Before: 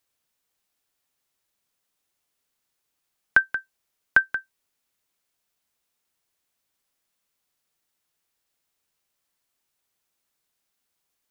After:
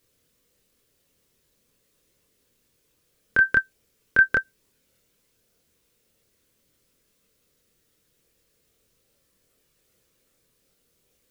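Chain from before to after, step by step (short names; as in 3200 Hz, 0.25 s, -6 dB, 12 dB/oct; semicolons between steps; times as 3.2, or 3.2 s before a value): resonant low shelf 600 Hz +7 dB, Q 3; negative-ratio compressor -19 dBFS, ratio -0.5; chorus voices 6, 0.42 Hz, delay 26 ms, depth 1 ms; gain +8 dB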